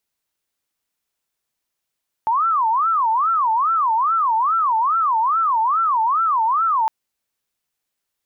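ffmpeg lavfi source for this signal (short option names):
-f lavfi -i "aevalsrc='0.178*sin(2*PI*(1114.5*t-235.5/(2*PI*2.4)*sin(2*PI*2.4*t)))':d=4.61:s=44100"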